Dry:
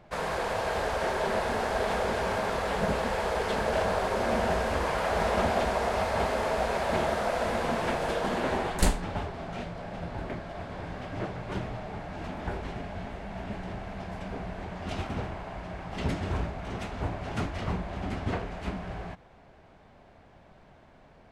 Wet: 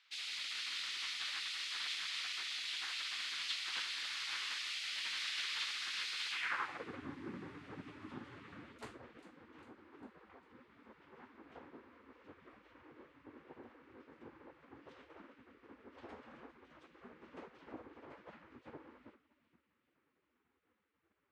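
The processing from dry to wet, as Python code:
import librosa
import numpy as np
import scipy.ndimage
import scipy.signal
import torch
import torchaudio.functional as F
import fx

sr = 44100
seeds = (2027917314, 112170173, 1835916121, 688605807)

p1 = scipy.signal.sosfilt(scipy.signal.butter(4, 110.0, 'highpass', fs=sr, output='sos'), x)
p2 = p1 + fx.echo_split(p1, sr, split_hz=330.0, low_ms=111, high_ms=401, feedback_pct=52, wet_db=-13.5, dry=0)
p3 = fx.spec_gate(p2, sr, threshold_db=-15, keep='weak')
p4 = fx.filter_sweep_bandpass(p3, sr, from_hz=3900.0, to_hz=250.0, start_s=6.29, end_s=6.99, q=1.7)
y = p4 * 10.0 ** (4.0 / 20.0)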